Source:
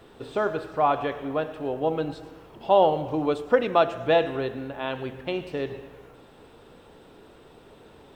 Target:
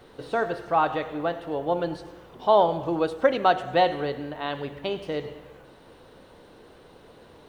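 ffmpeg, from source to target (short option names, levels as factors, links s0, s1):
-af "asetrate=48000,aresample=44100"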